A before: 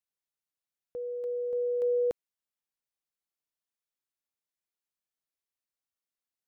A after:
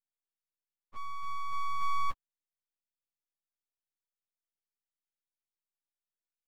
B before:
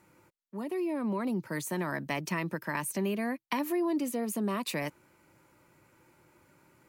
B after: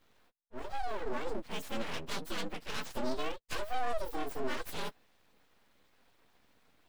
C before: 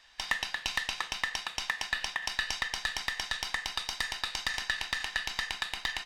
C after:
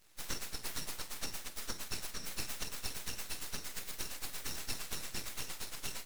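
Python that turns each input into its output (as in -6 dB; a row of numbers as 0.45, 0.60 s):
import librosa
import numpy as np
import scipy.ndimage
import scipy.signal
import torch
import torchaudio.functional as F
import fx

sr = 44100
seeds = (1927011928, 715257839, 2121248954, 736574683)

y = fx.partial_stretch(x, sr, pct=122)
y = np.abs(y)
y = y * librosa.db_to_amplitude(1.0)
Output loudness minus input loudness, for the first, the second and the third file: -5.0, -6.0, -8.5 LU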